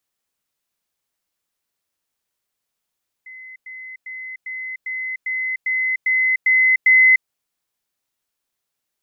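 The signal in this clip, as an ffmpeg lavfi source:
-f lavfi -i "aevalsrc='pow(10,(-35.5+3*floor(t/0.4))/20)*sin(2*PI*2040*t)*clip(min(mod(t,0.4),0.3-mod(t,0.4))/0.005,0,1)':d=4:s=44100"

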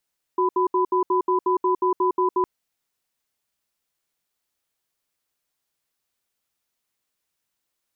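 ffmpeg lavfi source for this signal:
-f lavfi -i "aevalsrc='0.1*(sin(2*PI*368*t)+sin(2*PI*999*t))*clip(min(mod(t,0.18),0.11-mod(t,0.18))/0.005,0,1)':d=2.06:s=44100"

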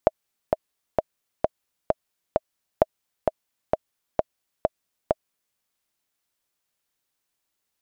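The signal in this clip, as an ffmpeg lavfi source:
-f lavfi -i "aevalsrc='pow(10,(-2-4*gte(mod(t,6*60/131),60/131))/20)*sin(2*PI*632*mod(t,60/131))*exp(-6.91*mod(t,60/131)/0.03)':d=5.49:s=44100"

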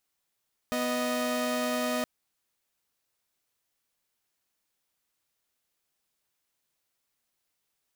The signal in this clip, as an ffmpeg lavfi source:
-f lavfi -i "aevalsrc='0.0422*((2*mod(246.94*t,1)-1)+(2*mod(622.25*t,1)-1))':d=1.32:s=44100"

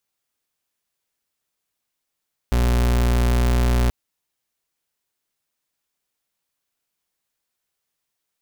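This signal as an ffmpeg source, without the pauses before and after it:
-f lavfi -i "aevalsrc='0.133*(2*lt(mod(60.4*t,1),0.38)-1)':d=1.38:s=44100"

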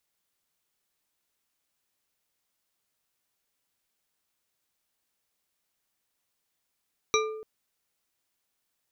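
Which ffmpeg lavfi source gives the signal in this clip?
-f lavfi -i "aevalsrc='0.0708*pow(10,-3*t/1.01)*sin(2*PI*436*t)+0.0668*pow(10,-3*t/0.497)*sin(2*PI*1202.1*t)+0.0631*pow(10,-3*t/0.31)*sin(2*PI*2356.1*t)+0.0596*pow(10,-3*t/0.218)*sin(2*PI*3894.8*t)+0.0562*pow(10,-3*t/0.165)*sin(2*PI*5816.2*t)':d=0.29:s=44100"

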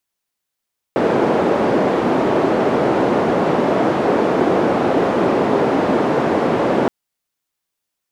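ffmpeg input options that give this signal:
-f lavfi -i "anoisesrc=c=white:d=5.92:r=44100:seed=1,highpass=f=250,lowpass=f=490,volume=7.6dB"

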